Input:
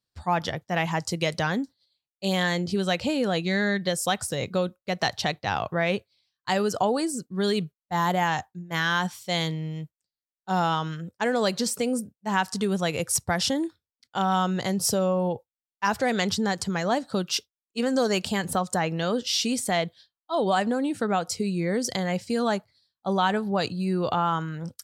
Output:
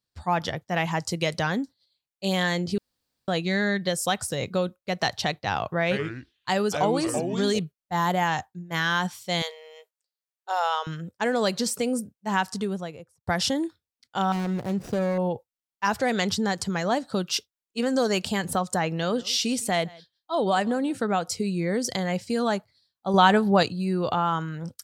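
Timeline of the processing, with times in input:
0:02.78–0:03.28: fill with room tone
0:05.83–0:07.59: delay with pitch and tempo change per echo 81 ms, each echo −4 semitones, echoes 2, each echo −6 dB
0:09.42–0:10.87: linear-phase brick-wall high-pass 390 Hz
0:12.34–0:13.27: fade out and dull
0:14.32–0:15.18: running median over 41 samples
0:18.91–0:20.98: single-tap delay 161 ms −23 dB
0:23.14–0:23.63: clip gain +6 dB

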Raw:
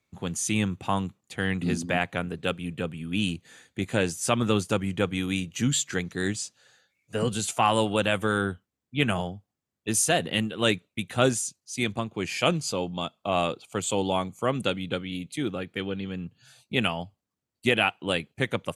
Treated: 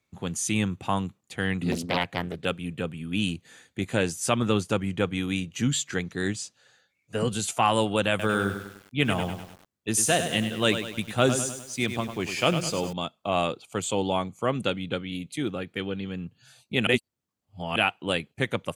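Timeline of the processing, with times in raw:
0:01.72–0:02.45: highs frequency-modulated by the lows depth 0.98 ms
0:04.39–0:07.15: high-shelf EQ 7,200 Hz −5 dB
0:08.09–0:12.93: feedback echo at a low word length 100 ms, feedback 55%, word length 7 bits, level −8.5 dB
0:13.87–0:15.08: high-shelf EQ 10,000 Hz −9.5 dB
0:16.87–0:17.76: reverse

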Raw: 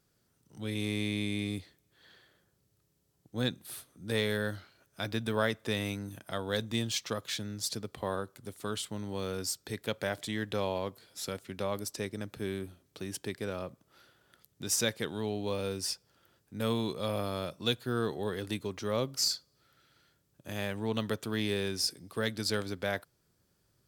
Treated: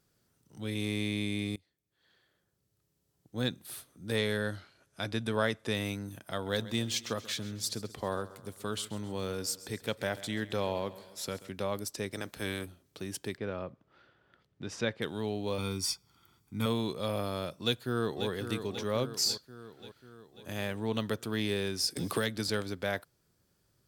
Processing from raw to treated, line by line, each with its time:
0:01.56–0:03.58: fade in, from −24 dB
0:04.16–0:05.75: Butterworth low-pass 12,000 Hz 48 dB per octave
0:06.29–0:11.49: repeating echo 134 ms, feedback 52%, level −17 dB
0:12.11–0:12.64: ceiling on every frequency bin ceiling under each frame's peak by 15 dB
0:13.37–0:15.02: low-pass filter 2,700 Hz
0:15.58–0:16.66: comb filter 0.9 ms, depth 77%
0:17.62–0:18.29: delay throw 540 ms, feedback 60%, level −8.5 dB
0:21.96–0:22.49: multiband upward and downward compressor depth 100%

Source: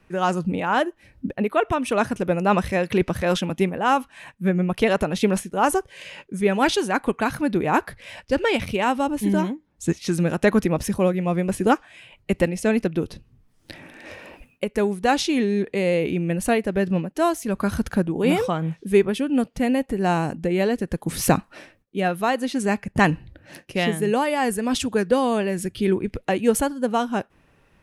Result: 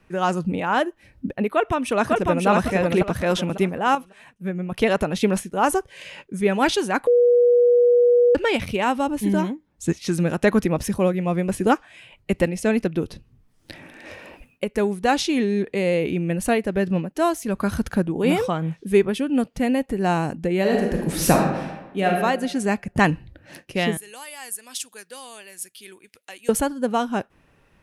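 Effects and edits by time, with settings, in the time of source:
0:01.49–0:02.47: delay throw 550 ms, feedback 30%, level −1.5 dB
0:03.95–0:04.72: clip gain −6.5 dB
0:07.07–0:08.35: beep over 484 Hz −12 dBFS
0:20.60–0:22.10: thrown reverb, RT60 1.1 s, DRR −0.5 dB
0:23.97–0:26.49: first difference

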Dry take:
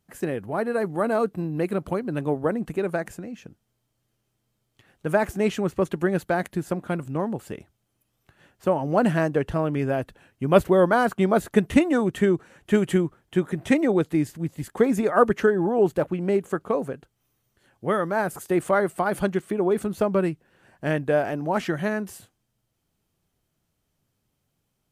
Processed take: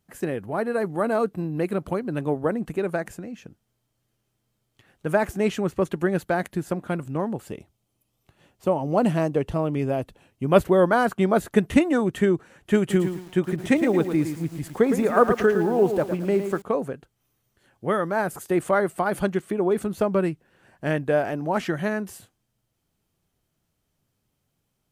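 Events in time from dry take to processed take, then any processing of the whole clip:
0:07.50–0:10.46: parametric band 1,600 Hz −9 dB 0.52 octaves
0:12.79–0:16.62: feedback echo at a low word length 111 ms, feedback 35%, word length 7 bits, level −8 dB

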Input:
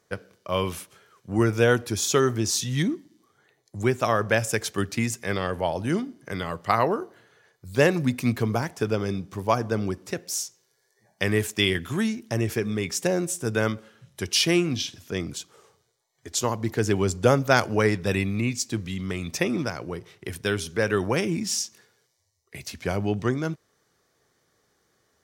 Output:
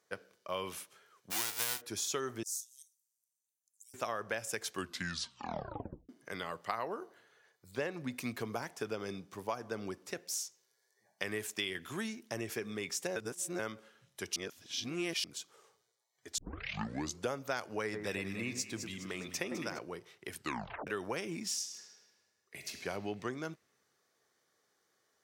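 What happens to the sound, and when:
0:01.30–0:01.80: spectral envelope flattened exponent 0.1
0:02.43–0:03.94: inverse Chebyshev high-pass filter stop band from 1,300 Hz, stop band 80 dB
0:04.72: tape stop 1.37 s
0:07.71–0:08.12: high-shelf EQ 6,200 Hz −11.5 dB
0:13.16–0:13.59: reverse
0:14.36–0:15.24: reverse
0:16.38: tape start 0.84 s
0:17.83–0:19.79: delay that swaps between a low-pass and a high-pass 103 ms, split 1,700 Hz, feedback 66%, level −7 dB
0:20.35: tape stop 0.52 s
0:21.57–0:22.77: thrown reverb, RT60 2.3 s, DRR 3.5 dB
whole clip: high-pass filter 450 Hz 6 dB per octave; downward compressor 4 to 1, threshold −27 dBFS; level −6.5 dB

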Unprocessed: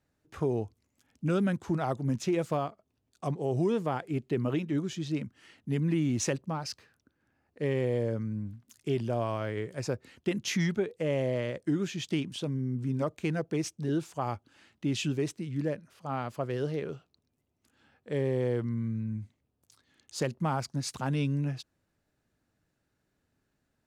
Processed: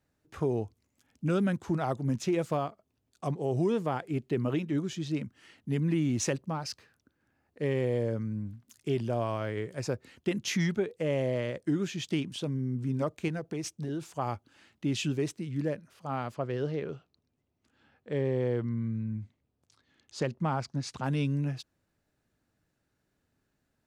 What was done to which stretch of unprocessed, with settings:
0:13.28–0:14.15: downward compressor, threshold −30 dBFS
0:16.34–0:21.04: high-frequency loss of the air 75 metres

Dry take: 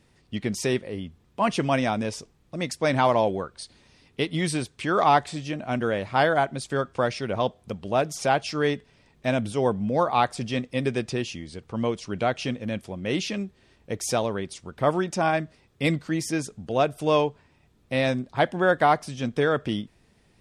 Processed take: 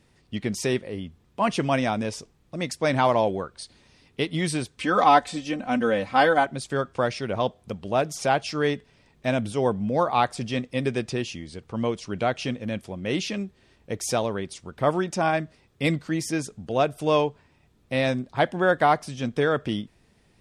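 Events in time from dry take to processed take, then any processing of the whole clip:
0:04.77–0:06.46: comb filter 3.9 ms, depth 75%

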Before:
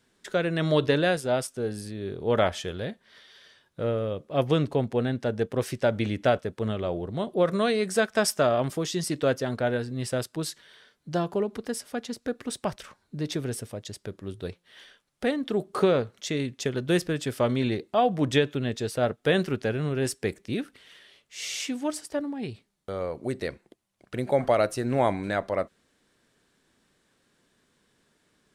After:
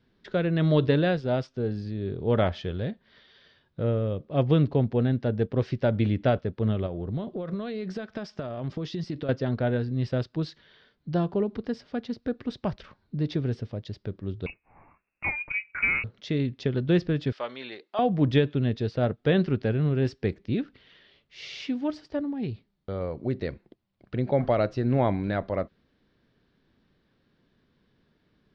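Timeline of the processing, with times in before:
0:06.86–0:09.29: downward compressor 16 to 1, threshold −29 dBFS
0:14.46–0:16.04: voice inversion scrambler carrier 2,700 Hz
0:17.32–0:17.99: high-pass filter 830 Hz
whole clip: Butterworth low-pass 4,900 Hz 36 dB per octave; low-shelf EQ 310 Hz +12 dB; level −4.5 dB

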